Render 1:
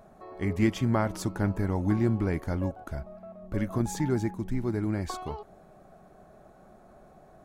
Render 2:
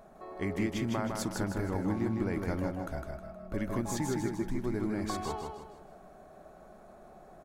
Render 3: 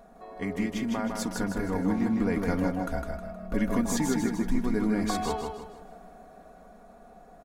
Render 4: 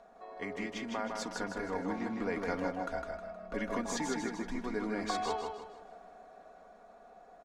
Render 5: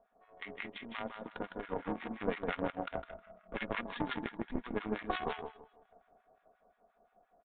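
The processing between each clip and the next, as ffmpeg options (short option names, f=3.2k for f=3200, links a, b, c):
-filter_complex "[0:a]equalizer=f=100:t=o:w=1.7:g=-6.5,acompressor=threshold=-29dB:ratio=6,asplit=2[a][b];[b]aecho=0:1:157|314|471|628|785:0.631|0.246|0.096|0.0374|0.0146[c];[a][c]amix=inputs=2:normalize=0"
-af "aecho=1:1:4.2:0.69,dynaudnorm=f=280:g=13:m=5dB"
-filter_complex "[0:a]acrossover=split=350 7400:gain=0.224 1 0.0891[a][b][c];[a][b][c]amix=inputs=3:normalize=0,volume=-2.5dB"
-filter_complex "[0:a]aeval=exprs='0.0944*(cos(1*acos(clip(val(0)/0.0944,-1,1)))-cos(1*PI/2))+0.0299*(cos(2*acos(clip(val(0)/0.0944,-1,1)))-cos(2*PI/2))+0.0188*(cos(6*acos(clip(val(0)/0.0944,-1,1)))-cos(6*PI/2))+0.0106*(cos(7*acos(clip(val(0)/0.0944,-1,1)))-cos(7*PI/2))+0.015*(cos(8*acos(clip(val(0)/0.0944,-1,1)))-cos(8*PI/2))':c=same,aresample=8000,aresample=44100,acrossover=split=1100[a][b];[a]aeval=exprs='val(0)*(1-1/2+1/2*cos(2*PI*5.7*n/s))':c=same[c];[b]aeval=exprs='val(0)*(1-1/2-1/2*cos(2*PI*5.7*n/s))':c=same[d];[c][d]amix=inputs=2:normalize=0,volume=4.5dB"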